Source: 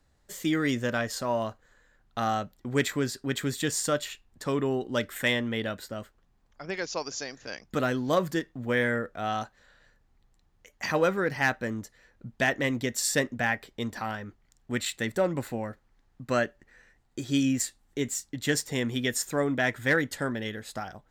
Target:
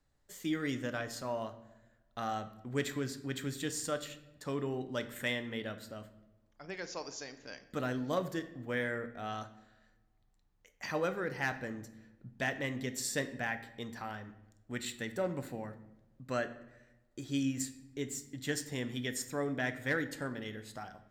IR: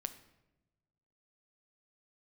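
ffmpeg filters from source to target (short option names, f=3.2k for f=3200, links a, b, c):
-filter_complex "[1:a]atrim=start_sample=2205[a];[0:a][a]afir=irnorm=-1:irlink=0,volume=-7dB"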